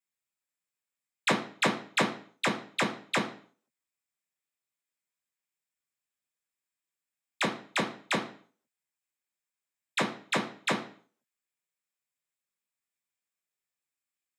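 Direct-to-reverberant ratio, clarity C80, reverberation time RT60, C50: 1.0 dB, 14.5 dB, 0.45 s, 10.0 dB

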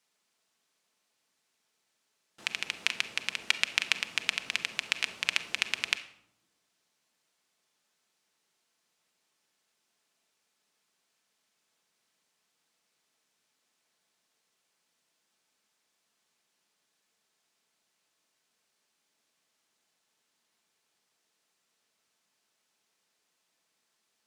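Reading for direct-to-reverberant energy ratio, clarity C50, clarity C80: 8.5 dB, 13.5 dB, 16.5 dB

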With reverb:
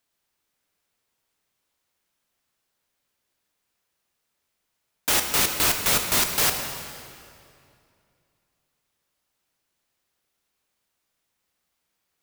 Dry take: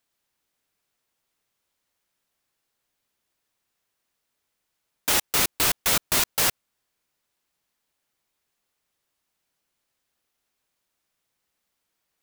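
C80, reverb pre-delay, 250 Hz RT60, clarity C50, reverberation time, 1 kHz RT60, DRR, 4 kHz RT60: 6.5 dB, 17 ms, 2.8 s, 5.5 dB, 2.5 s, 2.4 s, 4.5 dB, 2.0 s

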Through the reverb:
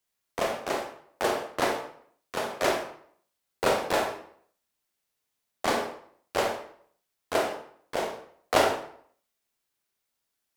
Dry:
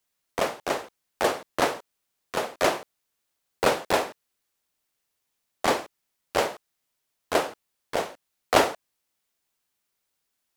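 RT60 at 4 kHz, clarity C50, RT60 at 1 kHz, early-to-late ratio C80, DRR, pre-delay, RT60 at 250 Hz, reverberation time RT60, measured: 0.45 s, 6.0 dB, 0.60 s, 9.5 dB, 2.5 dB, 24 ms, 0.60 s, 0.60 s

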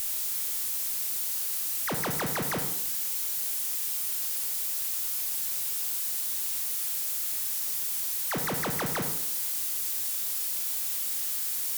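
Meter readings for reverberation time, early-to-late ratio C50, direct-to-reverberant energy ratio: 0.75 s, 7.5 dB, 6.0 dB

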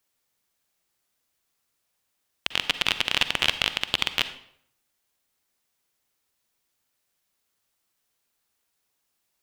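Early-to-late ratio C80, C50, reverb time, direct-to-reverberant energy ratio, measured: 15.0 dB, 12.0 dB, 0.65 s, 11.5 dB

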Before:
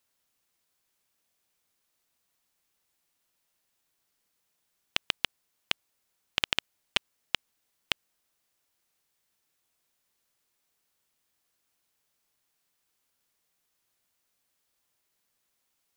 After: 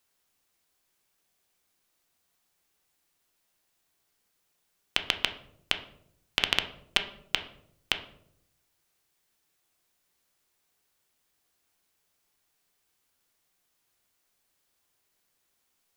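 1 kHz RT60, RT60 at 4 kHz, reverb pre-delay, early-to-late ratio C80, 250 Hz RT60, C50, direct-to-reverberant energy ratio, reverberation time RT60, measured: 0.60 s, 0.40 s, 3 ms, 15.5 dB, 0.95 s, 12.0 dB, 6.5 dB, 0.70 s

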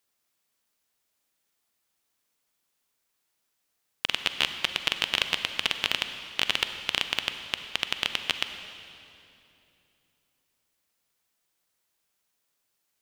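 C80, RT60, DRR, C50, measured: 9.0 dB, 2.8 s, 8.0 dB, 8.5 dB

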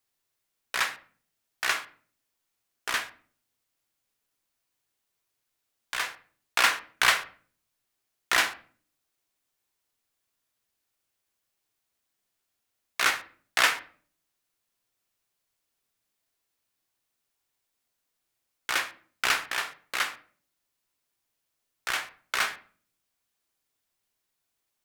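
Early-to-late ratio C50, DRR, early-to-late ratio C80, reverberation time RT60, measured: 15.0 dB, 8.5 dB, 20.0 dB, 0.45 s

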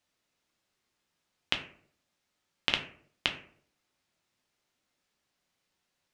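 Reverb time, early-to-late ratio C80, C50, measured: 0.55 s, 14.5 dB, 10.5 dB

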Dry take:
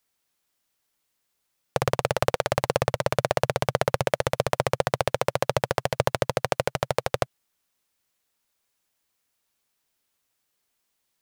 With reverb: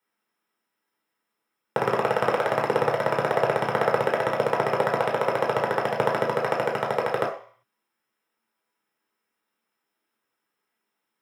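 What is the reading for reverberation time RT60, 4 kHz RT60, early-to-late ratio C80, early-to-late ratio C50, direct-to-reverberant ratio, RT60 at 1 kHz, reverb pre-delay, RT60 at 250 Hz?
0.50 s, 0.55 s, 11.5 dB, 6.5 dB, -2.0 dB, 0.55 s, 3 ms, 0.35 s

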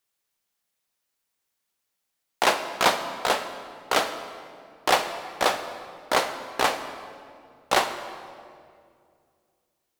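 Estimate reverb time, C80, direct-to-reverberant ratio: 2.2 s, 10.0 dB, 7.5 dB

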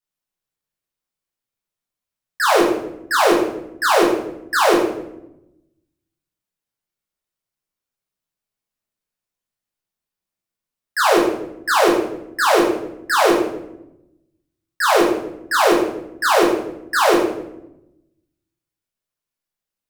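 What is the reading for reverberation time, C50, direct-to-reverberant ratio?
0.85 s, 3.5 dB, -5.5 dB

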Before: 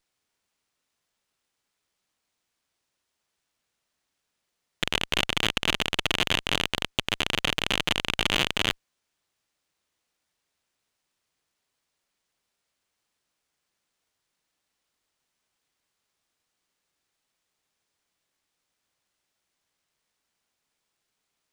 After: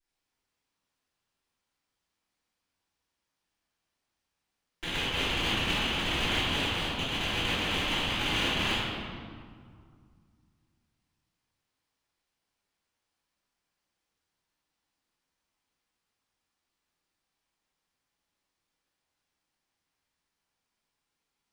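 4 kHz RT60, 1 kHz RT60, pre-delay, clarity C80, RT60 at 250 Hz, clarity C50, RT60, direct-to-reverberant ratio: 1.3 s, 2.1 s, 3 ms, -0.5 dB, 2.7 s, -3.0 dB, 2.1 s, -18.5 dB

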